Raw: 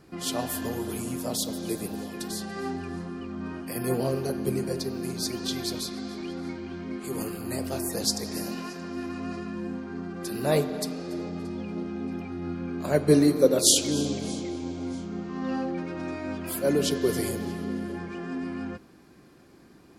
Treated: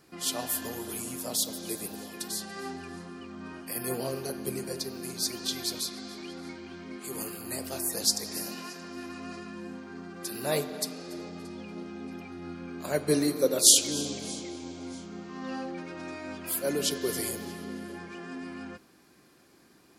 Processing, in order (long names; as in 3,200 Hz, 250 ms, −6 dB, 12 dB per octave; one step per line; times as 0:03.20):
spectral tilt +2 dB per octave
level −3.5 dB